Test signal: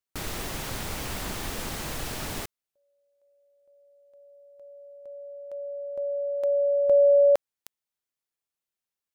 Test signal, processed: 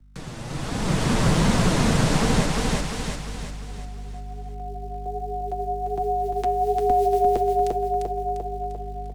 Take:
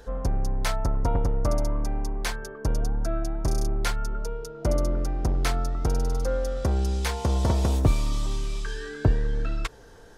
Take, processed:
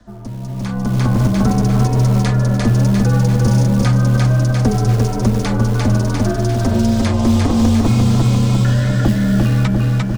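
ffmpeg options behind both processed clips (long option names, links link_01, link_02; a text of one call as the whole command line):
ffmpeg -i in.wav -filter_complex "[0:a]aeval=exprs='val(0)*sin(2*PI*160*n/s)':channel_layout=same,lowpass=frequency=9300:width=0.5412,lowpass=frequency=9300:width=1.3066,flanger=delay=4:depth=4.8:regen=20:speed=1.3:shape=sinusoidal,aecho=1:1:348|696|1044|1392|1740|2088:0.631|0.303|0.145|0.0698|0.0335|0.0161,aeval=exprs='val(0)+0.00141*(sin(2*PI*50*n/s)+sin(2*PI*2*50*n/s)/2+sin(2*PI*3*50*n/s)/3+sin(2*PI*4*50*n/s)/4+sin(2*PI*5*50*n/s)/5)':channel_layout=same,acrossover=split=270[link_01][link_02];[link_01]acrusher=bits=6:mode=log:mix=0:aa=0.000001[link_03];[link_03][link_02]amix=inputs=2:normalize=0,acrossover=split=84|310|1400[link_04][link_05][link_06][link_07];[link_04]acompressor=threshold=-47dB:ratio=4[link_08];[link_05]acompressor=threshold=-34dB:ratio=4[link_09];[link_06]acompressor=threshold=-43dB:ratio=4[link_10];[link_07]acompressor=threshold=-48dB:ratio=4[link_11];[link_08][link_09][link_10][link_11]amix=inputs=4:normalize=0,lowshelf=frequency=100:gain=7.5,bandreject=frequency=101.9:width_type=h:width=4,bandreject=frequency=203.8:width_type=h:width=4,bandreject=frequency=305.7:width_type=h:width=4,bandreject=frequency=407.6:width_type=h:width=4,bandreject=frequency=509.5:width_type=h:width=4,bandreject=frequency=611.4:width_type=h:width=4,bandreject=frequency=713.3:width_type=h:width=4,bandreject=frequency=815.2:width_type=h:width=4,bandreject=frequency=917.1:width_type=h:width=4,bandreject=frequency=1019:width_type=h:width=4,bandreject=frequency=1120.9:width_type=h:width=4,bandreject=frequency=1222.8:width_type=h:width=4,bandreject=frequency=1324.7:width_type=h:width=4,bandreject=frequency=1426.6:width_type=h:width=4,bandreject=frequency=1528.5:width_type=h:width=4,bandreject=frequency=1630.4:width_type=h:width=4,bandreject=frequency=1732.3:width_type=h:width=4,bandreject=frequency=1834.2:width_type=h:width=4,bandreject=frequency=1936.1:width_type=h:width=4,bandreject=frequency=2038:width_type=h:width=4,bandreject=frequency=2139.9:width_type=h:width=4,bandreject=frequency=2241.8:width_type=h:width=4,bandreject=frequency=2343.7:width_type=h:width=4,bandreject=frequency=2445.6:width_type=h:width=4,bandreject=frequency=2547.5:width_type=h:width=4,bandreject=frequency=2649.4:width_type=h:width=4,bandreject=frequency=2751.3:width_type=h:width=4,bandreject=frequency=2853.2:width_type=h:width=4,bandreject=frequency=2955.1:width_type=h:width=4,bandreject=frequency=3057:width_type=h:width=4,dynaudnorm=framelen=100:gausssize=17:maxgain=16dB,volume=3dB" out.wav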